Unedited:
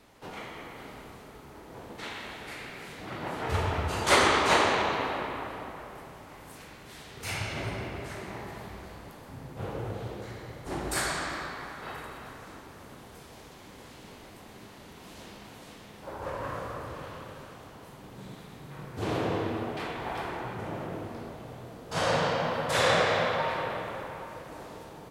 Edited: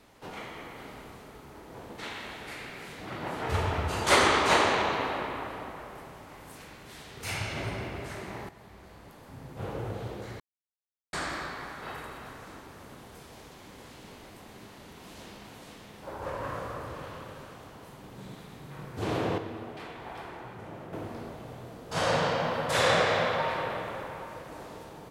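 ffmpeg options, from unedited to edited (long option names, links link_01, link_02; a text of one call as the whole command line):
ffmpeg -i in.wav -filter_complex "[0:a]asplit=6[link_01][link_02][link_03][link_04][link_05][link_06];[link_01]atrim=end=8.49,asetpts=PTS-STARTPTS,afade=type=out:start_time=8.486:duration=0.004:curve=hsin:silence=0.237137[link_07];[link_02]atrim=start=8.49:end=10.4,asetpts=PTS-STARTPTS,afade=type=in:duration=1.22:silence=0.237137,afade=type=out:start_time=1.906:duration=0.004:curve=hsin[link_08];[link_03]atrim=start=10.4:end=11.13,asetpts=PTS-STARTPTS,volume=0[link_09];[link_04]atrim=start=11.13:end=19.382,asetpts=PTS-STARTPTS,afade=type=in:duration=0.004:curve=hsin[link_10];[link_05]atrim=start=19.378:end=20.932,asetpts=PTS-STARTPTS,volume=-7dB[link_11];[link_06]atrim=start=20.928[link_12];[link_07][link_08][link_09][link_10]concat=n=4:v=0:a=1[link_13];[link_13][link_11]acrossfade=duration=0.004:curve1=hsin:curve2=hsin[link_14];[link_14][link_12]acrossfade=duration=0.004:curve1=hsin:curve2=hsin" out.wav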